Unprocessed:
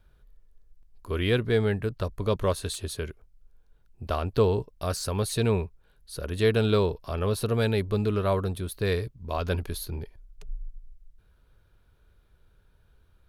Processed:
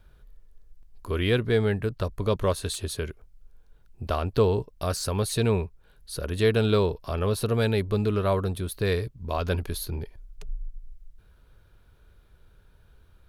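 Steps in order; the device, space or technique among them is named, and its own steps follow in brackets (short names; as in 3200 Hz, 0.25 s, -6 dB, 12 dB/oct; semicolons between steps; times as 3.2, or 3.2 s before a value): parallel compression (in parallel at -2.5 dB: compressor, threshold -39 dBFS, peak gain reduction 20.5 dB)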